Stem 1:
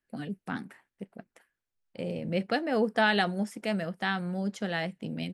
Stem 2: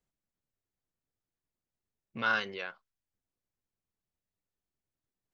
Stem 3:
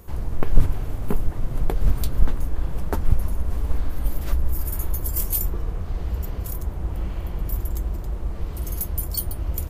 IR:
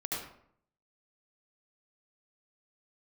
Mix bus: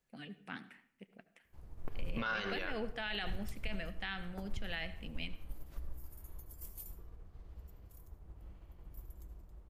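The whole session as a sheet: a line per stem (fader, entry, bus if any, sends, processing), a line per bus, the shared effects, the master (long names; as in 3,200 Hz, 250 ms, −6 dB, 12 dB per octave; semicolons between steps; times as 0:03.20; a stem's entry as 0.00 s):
−14.5 dB, 0.00 s, send −17 dB, parametric band 2,600 Hz +14 dB 1.3 octaves
+1.5 dB, 0.00 s, send −14.5 dB, no processing
−18.0 dB, 1.45 s, send −10 dB, expander for the loud parts 1.5 to 1, over −32 dBFS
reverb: on, RT60 0.65 s, pre-delay 68 ms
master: brickwall limiter −28 dBFS, peak gain reduction 12.5 dB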